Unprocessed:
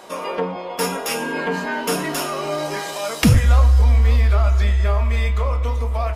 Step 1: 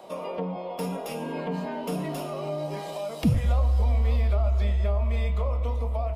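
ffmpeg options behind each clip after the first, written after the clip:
-filter_complex "[0:a]equalizer=f=160:t=o:w=0.67:g=7,equalizer=f=630:t=o:w=0.67:g=7,equalizer=f=1.6k:t=o:w=0.67:g=-10,equalizer=f=6.3k:t=o:w=0.67:g=-6,acrossover=split=300|600[a][b][c];[a]acompressor=threshold=-13dB:ratio=4[d];[b]acompressor=threshold=-32dB:ratio=4[e];[c]acompressor=threshold=-29dB:ratio=4[f];[d][e][f]amix=inputs=3:normalize=0,equalizer=f=12k:t=o:w=1.8:g=-4.5,volume=-6.5dB"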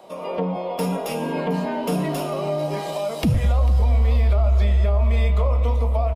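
-af "alimiter=limit=-19dB:level=0:latency=1:release=49,dynaudnorm=f=170:g=3:m=7dB,aecho=1:1:446:0.126"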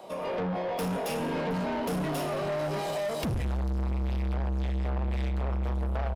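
-af "asoftclip=type=tanh:threshold=-27.5dB"

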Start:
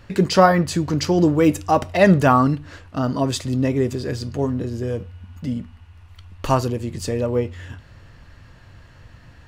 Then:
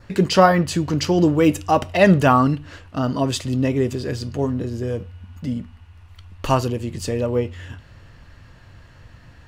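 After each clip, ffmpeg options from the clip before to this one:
-af "adynamicequalizer=threshold=0.00398:dfrequency=2900:dqfactor=4.5:tfrequency=2900:tqfactor=4.5:attack=5:release=100:ratio=0.375:range=3:mode=boostabove:tftype=bell"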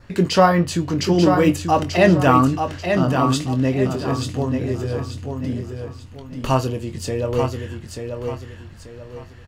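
-filter_complex "[0:a]asplit=2[a][b];[b]adelay=23,volume=-9dB[c];[a][c]amix=inputs=2:normalize=0,asplit=2[d][e];[e]aecho=0:1:887|1774|2661|3548:0.501|0.165|0.0546|0.018[f];[d][f]amix=inputs=2:normalize=0,volume=-1dB"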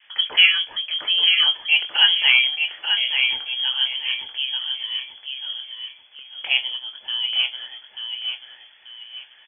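-filter_complex "[0:a]acrossover=split=250 2600:gain=0.1 1 0.141[a][b][c];[a][b][c]amix=inputs=3:normalize=0,lowpass=f=3k:t=q:w=0.5098,lowpass=f=3k:t=q:w=0.6013,lowpass=f=3k:t=q:w=0.9,lowpass=f=3k:t=q:w=2.563,afreqshift=-3500"

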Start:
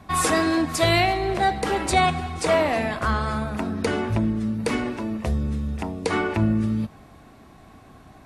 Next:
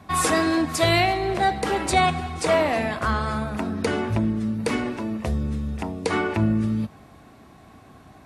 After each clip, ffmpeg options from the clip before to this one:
-af "highpass=56"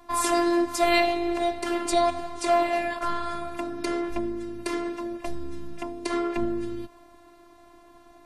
-af "afftfilt=real='hypot(re,im)*cos(PI*b)':imag='0':win_size=512:overlap=0.75"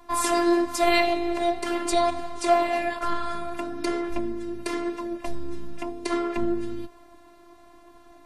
-af "flanger=delay=1.9:depth=4:regen=79:speed=1:shape=triangular,volume=5dB"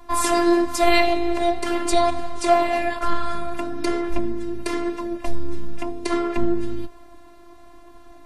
-af "lowshelf=f=89:g=7.5,volume=3dB"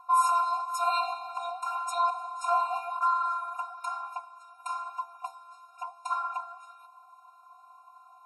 -af "highshelf=f=1.7k:t=q:w=1.5:g=-9,afftfilt=real='re*eq(mod(floor(b*sr/1024/720),2),1)':imag='im*eq(mod(floor(b*sr/1024/720),2),1)':win_size=1024:overlap=0.75"

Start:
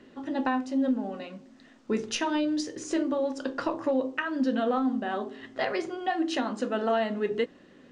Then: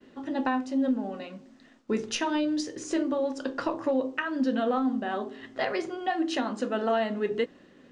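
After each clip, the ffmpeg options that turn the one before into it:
-af "agate=range=-33dB:threshold=-52dB:ratio=3:detection=peak"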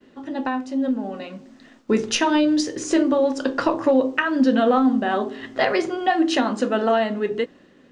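-af "dynaudnorm=f=300:g=9:m=7dB,volume=2dB"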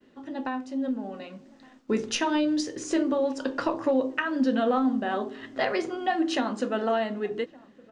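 -filter_complex "[0:a]asplit=2[a][b];[b]adelay=1166,volume=-24dB,highshelf=f=4k:g=-26.2[c];[a][c]amix=inputs=2:normalize=0,volume=-6.5dB"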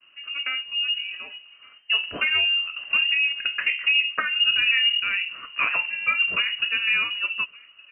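-af "lowpass=f=2.6k:t=q:w=0.5098,lowpass=f=2.6k:t=q:w=0.6013,lowpass=f=2.6k:t=q:w=0.9,lowpass=f=2.6k:t=q:w=2.563,afreqshift=-3100,volume=3dB"

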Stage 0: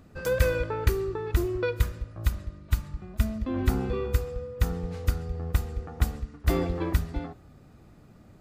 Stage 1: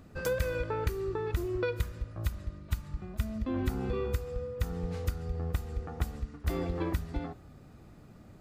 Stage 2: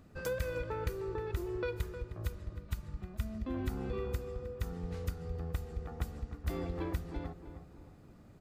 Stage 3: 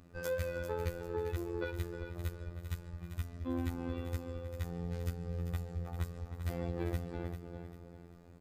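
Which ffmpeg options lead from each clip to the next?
-af "acompressor=threshold=-28dB:ratio=4"
-filter_complex "[0:a]asplit=2[a][b];[b]adelay=310,lowpass=f=1.8k:p=1,volume=-10dB,asplit=2[c][d];[d]adelay=310,lowpass=f=1.8k:p=1,volume=0.47,asplit=2[e][f];[f]adelay=310,lowpass=f=1.8k:p=1,volume=0.47,asplit=2[g][h];[h]adelay=310,lowpass=f=1.8k:p=1,volume=0.47,asplit=2[i][j];[j]adelay=310,lowpass=f=1.8k:p=1,volume=0.47[k];[a][c][e][g][i][k]amix=inputs=6:normalize=0,volume=-5dB"
-af "aecho=1:1:395|790|1185|1580:0.335|0.127|0.0484|0.0184,afftfilt=real='hypot(re,im)*cos(PI*b)':imag='0':win_size=2048:overlap=0.75,volume=2dB"

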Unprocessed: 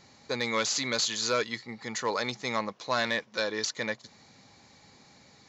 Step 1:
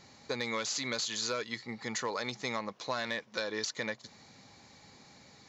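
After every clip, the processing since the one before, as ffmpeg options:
-af "acompressor=threshold=-31dB:ratio=6"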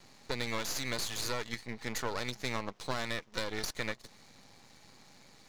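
-af "aeval=exprs='max(val(0),0)':c=same,volume=2.5dB"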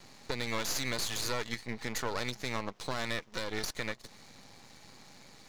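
-af "alimiter=limit=-23dB:level=0:latency=1:release=255,volume=3.5dB"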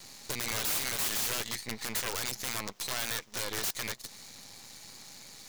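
-af "crystalizer=i=3.5:c=0,aeval=exprs='(mod(12.6*val(0)+1,2)-1)/12.6':c=same,volume=-1dB"

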